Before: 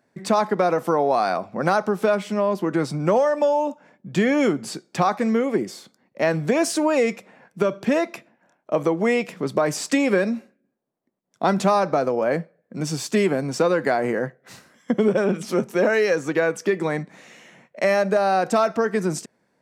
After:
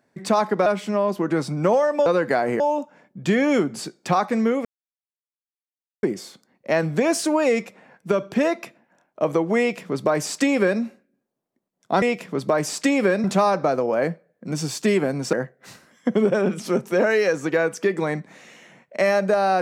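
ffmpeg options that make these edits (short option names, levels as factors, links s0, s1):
-filter_complex "[0:a]asplit=8[s0][s1][s2][s3][s4][s5][s6][s7];[s0]atrim=end=0.662[s8];[s1]atrim=start=2.088:end=3.492[s9];[s2]atrim=start=13.618:end=14.162[s10];[s3]atrim=start=3.488:end=5.54,asetpts=PTS-STARTPTS,afade=t=out:st=2.048:d=0.004:c=hsin,apad=pad_dur=1.38[s11];[s4]atrim=start=5.54:end=11.532,asetpts=PTS-STARTPTS,afade=t=in:d=0.004:c=hsin[s12];[s5]atrim=start=9.098:end=10.322[s13];[s6]atrim=start=11.528:end=13.622[s14];[s7]atrim=start=14.158[s15];[s8][s9]acrossfade=d=0.004:c1=hsin:c2=hsin[s16];[s16][s10]acrossfade=d=0.004:c1=hsin:c2=hsin[s17];[s11][s12]concat=n=2:v=0:a=1[s18];[s17][s18]acrossfade=d=0.004:c1=hsin:c2=hsin[s19];[s19][s13]acrossfade=d=0.004:c1=hsin:c2=hsin[s20];[s20][s14]acrossfade=d=0.004:c1=hsin:c2=hsin[s21];[s21][s15]acrossfade=d=0.004:c1=hsin:c2=hsin"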